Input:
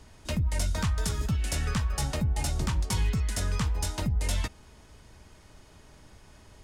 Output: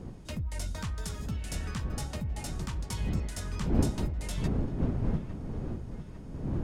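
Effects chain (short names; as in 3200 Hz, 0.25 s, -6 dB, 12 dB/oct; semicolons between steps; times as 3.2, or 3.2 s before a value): wind noise 180 Hz -27 dBFS; dark delay 0.852 s, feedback 56%, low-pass 2200 Hz, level -11.5 dB; gain -7.5 dB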